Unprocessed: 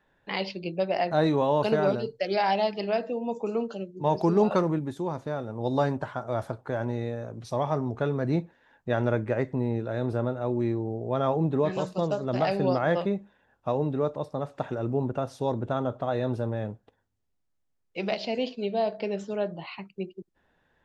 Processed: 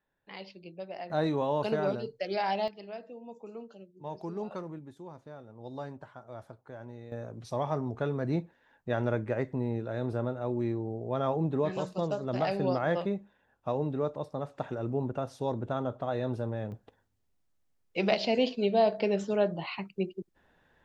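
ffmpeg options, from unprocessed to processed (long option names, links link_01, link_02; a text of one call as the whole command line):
ffmpeg -i in.wav -af "asetnsamples=nb_out_samples=441:pad=0,asendcmd='1.1 volume volume -5.5dB;2.68 volume volume -15dB;7.12 volume volume -4dB;16.72 volume volume 2.5dB',volume=-14dB" out.wav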